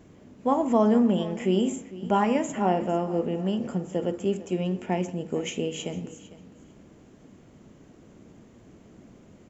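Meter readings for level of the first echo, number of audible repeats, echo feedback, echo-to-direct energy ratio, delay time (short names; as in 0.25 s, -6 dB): -17.5 dB, 2, 18%, -17.5 dB, 0.452 s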